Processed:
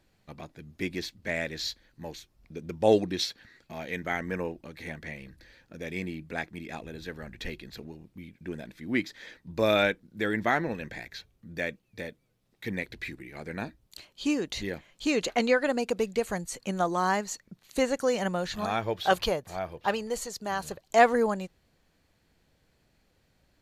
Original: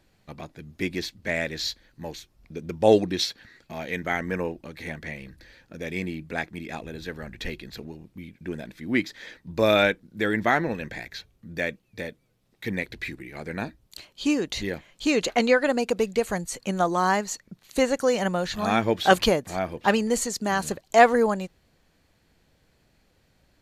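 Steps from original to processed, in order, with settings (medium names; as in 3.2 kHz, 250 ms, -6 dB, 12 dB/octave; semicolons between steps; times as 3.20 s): 18.66–20.81 s: graphic EQ 250/2000/8000 Hz -10/-4/-6 dB; trim -4 dB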